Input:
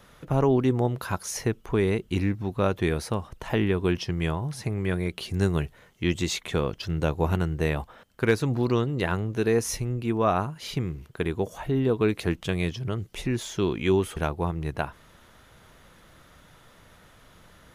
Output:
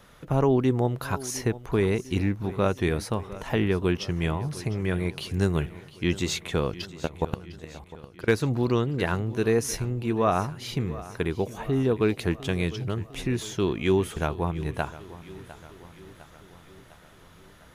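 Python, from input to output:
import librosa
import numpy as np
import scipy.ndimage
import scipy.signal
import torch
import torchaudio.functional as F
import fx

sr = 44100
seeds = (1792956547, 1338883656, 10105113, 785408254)

p1 = fx.level_steps(x, sr, step_db=22, at=(6.85, 8.28))
y = p1 + fx.echo_feedback(p1, sr, ms=704, feedback_pct=57, wet_db=-17, dry=0)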